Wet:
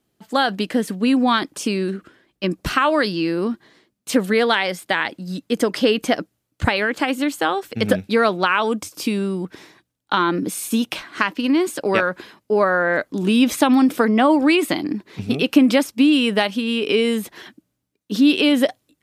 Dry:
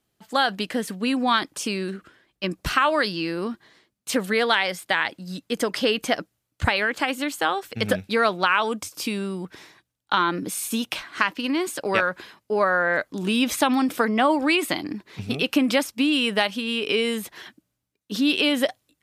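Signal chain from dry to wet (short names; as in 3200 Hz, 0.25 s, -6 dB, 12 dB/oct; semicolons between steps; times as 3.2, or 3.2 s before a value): bell 280 Hz +6.5 dB 2 oct; gain +1 dB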